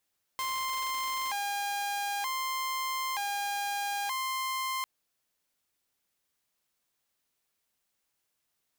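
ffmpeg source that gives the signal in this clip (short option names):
-f lavfi -i "aevalsrc='0.0398*(2*mod((929.5*t+120.5/0.54*(0.5-abs(mod(0.54*t,1)-0.5))),1)-1)':d=4.45:s=44100"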